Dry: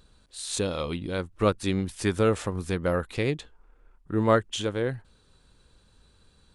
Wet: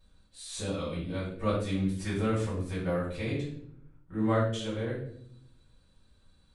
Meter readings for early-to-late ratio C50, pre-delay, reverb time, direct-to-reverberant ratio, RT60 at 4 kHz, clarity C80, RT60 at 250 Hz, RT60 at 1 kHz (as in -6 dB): 4.0 dB, 3 ms, 0.65 s, -8.5 dB, 0.50 s, 8.0 dB, 1.2 s, 0.50 s